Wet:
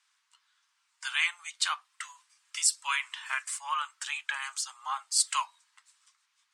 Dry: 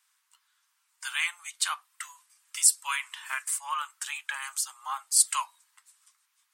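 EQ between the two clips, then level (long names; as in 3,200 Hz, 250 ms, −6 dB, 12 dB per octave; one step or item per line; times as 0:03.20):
high-frequency loss of the air 110 metres
high-shelf EQ 3,400 Hz +8.5 dB
0.0 dB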